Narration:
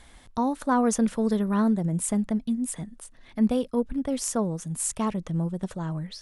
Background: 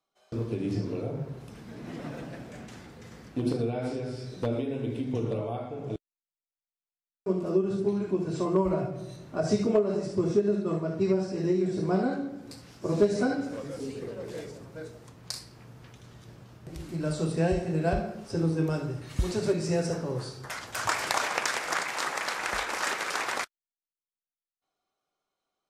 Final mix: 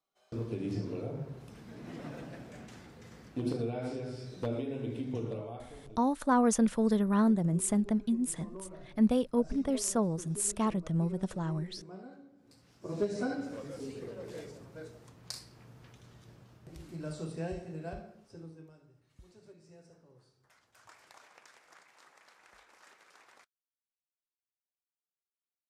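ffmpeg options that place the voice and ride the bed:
-filter_complex "[0:a]adelay=5600,volume=0.708[s0];[1:a]volume=3.55,afade=t=out:st=5.07:d=0.93:silence=0.149624,afade=t=in:st=12.36:d=1.12:silence=0.158489,afade=t=out:st=15.92:d=2.82:silence=0.0630957[s1];[s0][s1]amix=inputs=2:normalize=0"

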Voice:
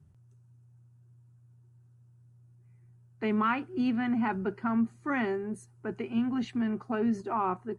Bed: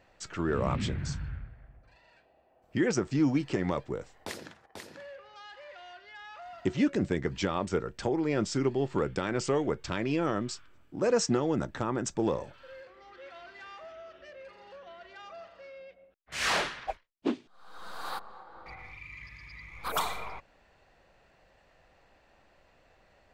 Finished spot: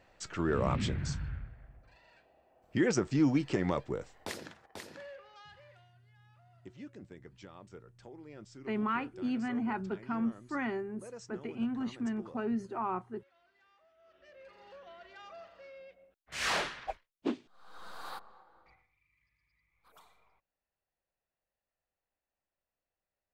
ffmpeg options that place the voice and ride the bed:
-filter_complex "[0:a]adelay=5450,volume=0.562[s0];[1:a]volume=7.08,afade=t=out:st=5:d=0.91:silence=0.0944061,afade=t=in:st=13.97:d=0.68:silence=0.125893,afade=t=out:st=17.77:d=1.1:silence=0.0446684[s1];[s0][s1]amix=inputs=2:normalize=0"

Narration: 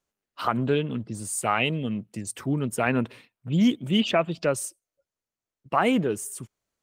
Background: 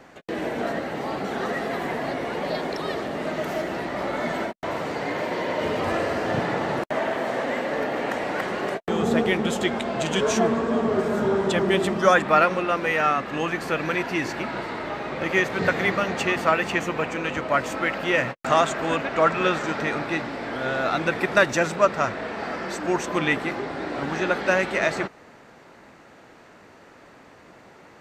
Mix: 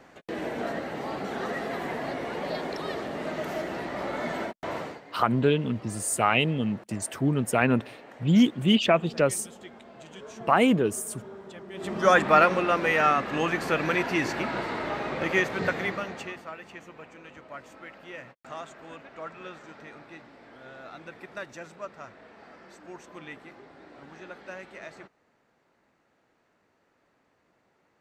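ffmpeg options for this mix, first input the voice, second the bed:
-filter_complex "[0:a]adelay=4750,volume=1.19[s0];[1:a]volume=6.68,afade=t=out:st=4.78:d=0.23:silence=0.141254,afade=t=in:st=11.74:d=0.45:silence=0.0891251,afade=t=out:st=15.02:d=1.42:silence=0.105925[s1];[s0][s1]amix=inputs=2:normalize=0"

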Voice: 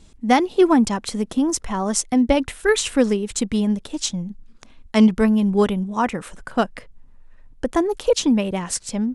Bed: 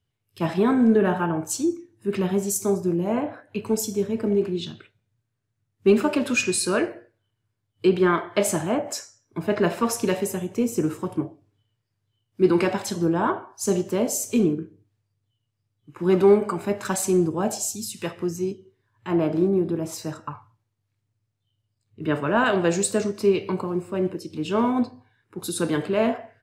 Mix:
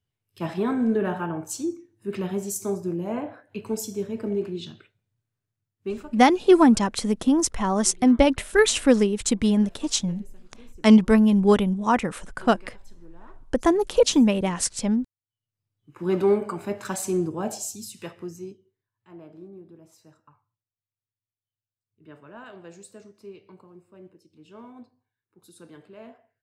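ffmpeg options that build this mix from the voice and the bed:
-filter_complex "[0:a]adelay=5900,volume=1[s0];[1:a]volume=8.41,afade=t=out:st=5.38:d=0.78:silence=0.0707946,afade=t=in:st=15.27:d=0.59:silence=0.0668344,afade=t=out:st=17.56:d=1.48:silence=0.11885[s1];[s0][s1]amix=inputs=2:normalize=0"

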